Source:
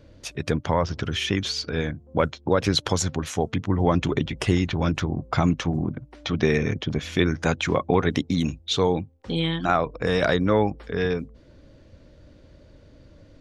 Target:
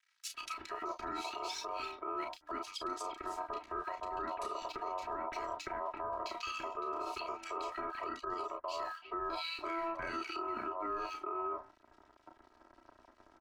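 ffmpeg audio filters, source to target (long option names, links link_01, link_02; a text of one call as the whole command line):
ffmpeg -i in.wav -filter_complex "[0:a]superequalizer=7b=2.82:12b=0.398:16b=2,aeval=exprs='sgn(val(0))*max(abs(val(0))-0.00562,0)':channel_layout=same,highshelf=frequency=5400:gain=-5.5,asplit=2[link_01][link_02];[link_02]aecho=0:1:32|42:0.447|0.224[link_03];[link_01][link_03]amix=inputs=2:normalize=0,aeval=exprs='val(0)*sin(2*PI*830*n/s)':channel_layout=same,acrossover=split=2100[link_04][link_05];[link_04]adelay=340[link_06];[link_06][link_05]amix=inputs=2:normalize=0,areverse,acompressor=threshold=-30dB:ratio=6,areverse,aecho=1:1:3.1:0.76,acrossover=split=240|750[link_07][link_08][link_09];[link_07]acompressor=threshold=-53dB:ratio=4[link_10];[link_08]acompressor=threshold=-44dB:ratio=4[link_11];[link_09]acompressor=threshold=-36dB:ratio=4[link_12];[link_10][link_11][link_12]amix=inputs=3:normalize=0,alimiter=level_in=6.5dB:limit=-24dB:level=0:latency=1:release=71,volume=-6.5dB,volume=1dB" out.wav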